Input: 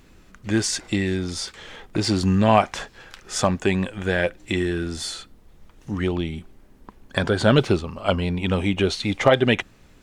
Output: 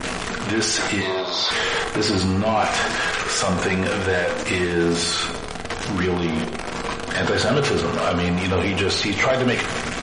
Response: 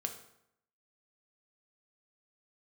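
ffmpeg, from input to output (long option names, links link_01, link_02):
-filter_complex "[0:a]aeval=exprs='val(0)+0.5*0.0794*sgn(val(0))':channel_layout=same,adynamicequalizer=threshold=0.0141:dfrequency=4100:dqfactor=1:tfrequency=4100:tqfactor=1:attack=5:release=100:ratio=0.375:range=2:mode=cutabove:tftype=bell,alimiter=limit=-12dB:level=0:latency=1:release=37,asplit=2[link_01][link_02];[link_02]highpass=frequency=720:poles=1,volume=16dB,asoftclip=type=tanh:threshold=-12dB[link_03];[link_01][link_03]amix=inputs=2:normalize=0,lowpass=frequency=4000:poles=1,volume=-6dB,asettb=1/sr,asplit=3[link_04][link_05][link_06];[link_04]atrim=end=1.014[link_07];[link_05]atrim=start=1.01:end=1.51,asetpts=PTS-STARTPTS,afade=type=in:duration=0.004:curve=qsin,afade=type=out:start_time=0.496:duration=0.004:curve=qsin,highpass=480,equalizer=frequency=610:width_type=q:width=4:gain=8,equalizer=frequency=1000:width_type=q:width=4:gain=9,equalizer=frequency=1600:width_type=q:width=4:gain=-8,equalizer=frequency=2600:width_type=q:width=4:gain=-6,equalizer=frequency=3900:width_type=q:width=4:gain=10,lowpass=frequency=5300:width=0.5412,lowpass=frequency=5300:width=1.3066[link_08];[link_06]atrim=start=1.506[link_09];[link_07][link_08]acrossfade=duration=0.004:curve1=hsin:curve2=qsin[link_10];[link_10][link_09]acrossfade=duration=0.004:curve1=qsin:curve2=hsin,asplit=2[link_11][link_12];[link_12]adelay=421,lowpass=frequency=1300:poles=1,volume=-19dB,asplit=2[link_13][link_14];[link_14]adelay=421,lowpass=frequency=1300:poles=1,volume=0.42,asplit=2[link_15][link_16];[link_16]adelay=421,lowpass=frequency=1300:poles=1,volume=0.42[link_17];[link_11][link_13][link_15][link_17]amix=inputs=4:normalize=0[link_18];[1:a]atrim=start_sample=2205[link_19];[link_18][link_19]afir=irnorm=-1:irlink=0" -ar 44100 -c:a libmp3lame -b:a 40k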